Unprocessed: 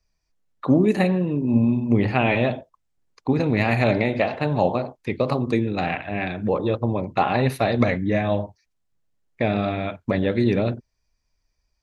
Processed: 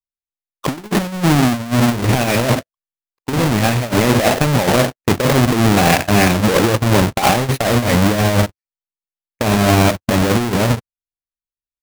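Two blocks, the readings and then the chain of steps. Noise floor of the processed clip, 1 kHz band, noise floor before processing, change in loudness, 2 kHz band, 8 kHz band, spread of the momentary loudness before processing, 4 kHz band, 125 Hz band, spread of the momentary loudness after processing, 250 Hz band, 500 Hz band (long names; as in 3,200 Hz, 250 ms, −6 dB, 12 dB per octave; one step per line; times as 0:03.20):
below −85 dBFS, +8.0 dB, −74 dBFS, +7.0 dB, +8.0 dB, can't be measured, 8 LU, +15.0 dB, +8.0 dB, 7 LU, +5.5 dB, +5.0 dB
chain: each half-wave held at its own peak
leveller curve on the samples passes 2
compressor whose output falls as the input rises −13 dBFS, ratio −0.5
noise gate −18 dBFS, range −36 dB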